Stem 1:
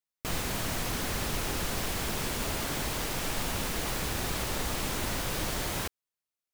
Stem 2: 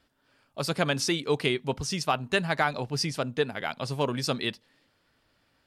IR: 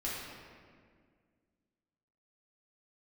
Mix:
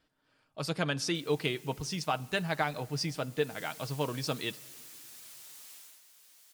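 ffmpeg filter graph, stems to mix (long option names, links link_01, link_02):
-filter_complex "[0:a]aderivative,adelay=900,volume=-12.5dB,afade=type=in:start_time=3.36:duration=0.26:silence=0.446684,afade=type=out:start_time=5.74:duration=0.27:silence=0.334965[link_01];[1:a]volume=-6dB,asplit=2[link_02][link_03];[link_03]volume=-24dB[link_04];[2:a]atrim=start_sample=2205[link_05];[link_04][link_05]afir=irnorm=-1:irlink=0[link_06];[link_01][link_02][link_06]amix=inputs=3:normalize=0,highshelf=frequency=12000:gain=-5,aecho=1:1:6.4:0.37"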